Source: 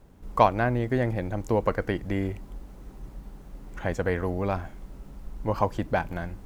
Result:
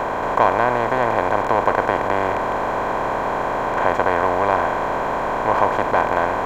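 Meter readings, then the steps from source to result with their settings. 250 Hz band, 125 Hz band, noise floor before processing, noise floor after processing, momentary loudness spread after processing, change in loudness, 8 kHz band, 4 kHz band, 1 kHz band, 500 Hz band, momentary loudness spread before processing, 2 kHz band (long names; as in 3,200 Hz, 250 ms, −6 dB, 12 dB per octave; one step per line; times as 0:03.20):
+2.5 dB, −2.5 dB, −47 dBFS, −23 dBFS, 4 LU, +8.0 dB, can't be measured, +9.0 dB, +13.0 dB, +9.0 dB, 23 LU, +12.0 dB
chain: compressor on every frequency bin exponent 0.2
drawn EQ curve 160 Hz 0 dB, 1,300 Hz +10 dB, 4,700 Hz +3 dB
level −8 dB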